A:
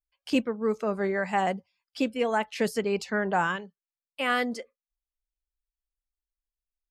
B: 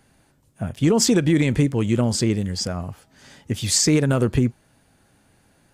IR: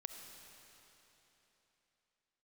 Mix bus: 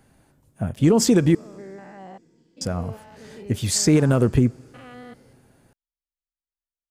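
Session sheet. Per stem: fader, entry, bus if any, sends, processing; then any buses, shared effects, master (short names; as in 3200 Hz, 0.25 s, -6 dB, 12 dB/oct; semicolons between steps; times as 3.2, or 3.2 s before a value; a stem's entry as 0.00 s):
-10.5 dB, 0.60 s, no send, stepped spectrum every 0.2 s; bell 4100 Hz +9 dB 0.41 oct
+1.0 dB, 0.00 s, muted 1.35–2.61, send -17.5 dB, high shelf 7000 Hz +10 dB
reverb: on, RT60 3.6 s, pre-delay 25 ms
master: high shelf 2200 Hz -10.5 dB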